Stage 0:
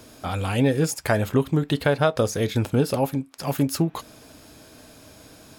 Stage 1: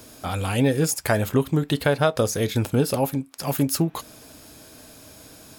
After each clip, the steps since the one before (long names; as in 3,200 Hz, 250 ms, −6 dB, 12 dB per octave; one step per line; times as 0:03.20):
high-shelf EQ 7,300 Hz +8 dB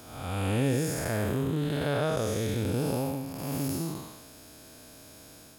spectrum smeared in time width 281 ms
level −2.5 dB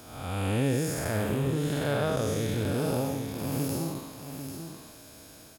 single-tap delay 793 ms −8 dB